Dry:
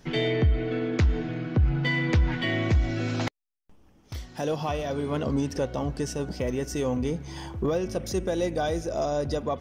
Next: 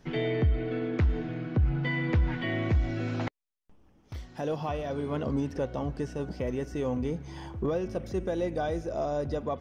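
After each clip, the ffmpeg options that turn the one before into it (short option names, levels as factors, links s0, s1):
-filter_complex "[0:a]acrossover=split=3100[s0][s1];[s1]acompressor=threshold=0.00562:ratio=4:attack=1:release=60[s2];[s0][s2]amix=inputs=2:normalize=0,highshelf=f=3800:g=-7,volume=0.708"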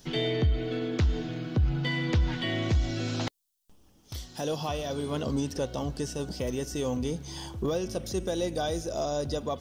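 -af "aexciter=amount=2.6:drive=9:freq=3100"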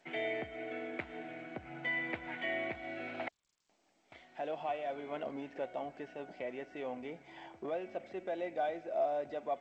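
-af "highpass=420,equalizer=f=470:t=q:w=4:g=-5,equalizer=f=680:t=q:w=4:g=8,equalizer=f=1100:t=q:w=4:g=-6,equalizer=f=2200:t=q:w=4:g=10,lowpass=f=2400:w=0.5412,lowpass=f=2400:w=1.3066,volume=0.531" -ar 16000 -c:a g722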